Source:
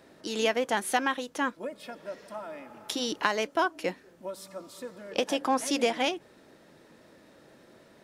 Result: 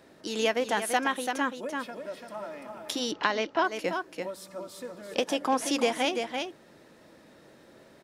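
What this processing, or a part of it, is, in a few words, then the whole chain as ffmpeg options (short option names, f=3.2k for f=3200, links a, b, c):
ducked delay: -filter_complex "[0:a]asplit=3[a][b][c];[b]adelay=338,volume=-5dB[d];[c]apad=whole_len=369287[e];[d][e]sidechaincompress=threshold=-30dB:ratio=8:attack=6.6:release=131[f];[a][f]amix=inputs=2:normalize=0,asplit=3[g][h][i];[g]afade=t=out:st=3.11:d=0.02[j];[h]lowpass=f=5.4k:w=0.5412,lowpass=f=5.4k:w=1.3066,afade=t=in:st=3.11:d=0.02,afade=t=out:st=3.63:d=0.02[k];[i]afade=t=in:st=3.63:d=0.02[l];[j][k][l]amix=inputs=3:normalize=0"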